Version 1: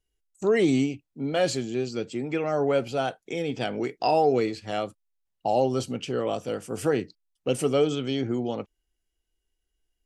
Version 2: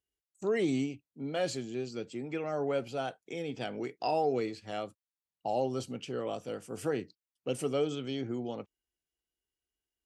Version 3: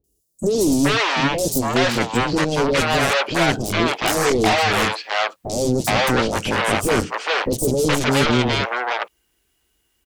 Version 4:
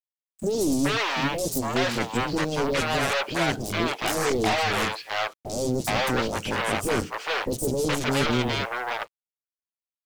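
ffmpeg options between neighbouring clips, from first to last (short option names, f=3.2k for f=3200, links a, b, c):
-af "highpass=76,volume=-8dB"
-filter_complex "[0:a]aeval=exprs='0.119*sin(PI/2*1.78*val(0)/0.119)':c=same,aeval=exprs='0.126*(cos(1*acos(clip(val(0)/0.126,-1,1)))-cos(1*PI/2))+0.0631*(cos(7*acos(clip(val(0)/0.126,-1,1)))-cos(7*PI/2))':c=same,acrossover=split=550|5200[a][b][c];[c]adelay=40[d];[b]adelay=420[e];[a][e][d]amix=inputs=3:normalize=0,volume=8dB"
-af "acrusher=bits=6:mix=0:aa=0.5,aeval=exprs='0.708*(cos(1*acos(clip(val(0)/0.708,-1,1)))-cos(1*PI/2))+0.0224*(cos(6*acos(clip(val(0)/0.708,-1,1)))-cos(6*PI/2))':c=same,volume=-6.5dB"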